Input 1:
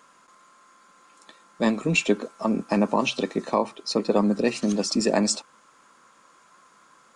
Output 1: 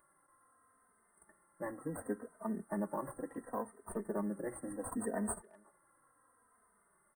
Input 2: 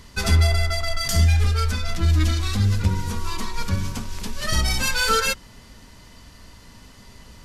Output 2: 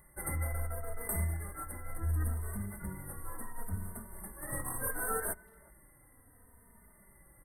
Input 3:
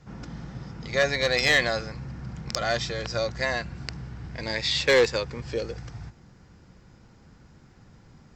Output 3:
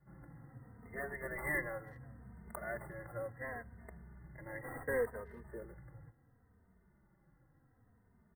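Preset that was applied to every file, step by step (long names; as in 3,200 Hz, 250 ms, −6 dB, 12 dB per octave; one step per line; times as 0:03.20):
first-order pre-emphasis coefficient 0.8
in parallel at −10 dB: sample-rate reduction 2,100 Hz, jitter 0%
on the sum: linear-phase brick-wall band-stop 2,100–8,100 Hz
far-end echo of a speakerphone 370 ms, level −23 dB
barber-pole flanger 3 ms −0.7 Hz
level −1.5 dB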